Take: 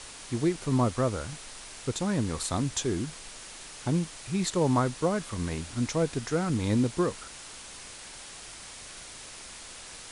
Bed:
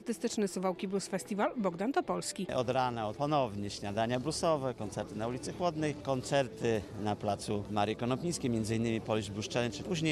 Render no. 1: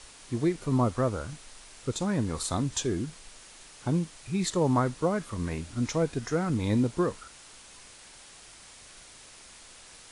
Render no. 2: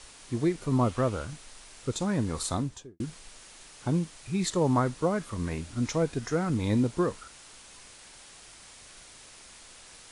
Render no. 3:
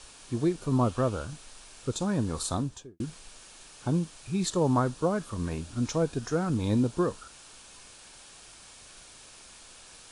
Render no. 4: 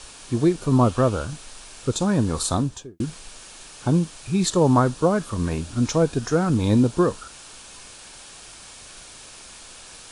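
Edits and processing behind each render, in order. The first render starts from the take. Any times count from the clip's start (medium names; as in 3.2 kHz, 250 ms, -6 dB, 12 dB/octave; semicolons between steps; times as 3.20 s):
noise print and reduce 6 dB
0.81–1.25 s: peaking EQ 2.8 kHz +6 dB 0.75 oct; 2.48–3.00 s: studio fade out
band-stop 2 kHz, Q 9.4; dynamic bell 2.1 kHz, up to -5 dB, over -56 dBFS, Q 3.1
trim +7.5 dB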